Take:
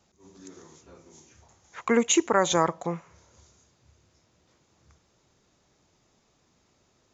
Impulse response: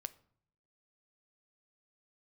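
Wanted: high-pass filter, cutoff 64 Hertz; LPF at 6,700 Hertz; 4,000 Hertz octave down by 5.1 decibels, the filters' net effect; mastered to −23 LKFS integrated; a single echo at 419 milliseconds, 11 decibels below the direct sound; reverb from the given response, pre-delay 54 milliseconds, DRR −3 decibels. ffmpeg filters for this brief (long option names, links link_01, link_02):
-filter_complex "[0:a]highpass=64,lowpass=6700,equalizer=frequency=4000:width_type=o:gain=-6.5,aecho=1:1:419:0.282,asplit=2[link_01][link_02];[1:a]atrim=start_sample=2205,adelay=54[link_03];[link_02][link_03]afir=irnorm=-1:irlink=0,volume=6dB[link_04];[link_01][link_04]amix=inputs=2:normalize=0,volume=-2dB"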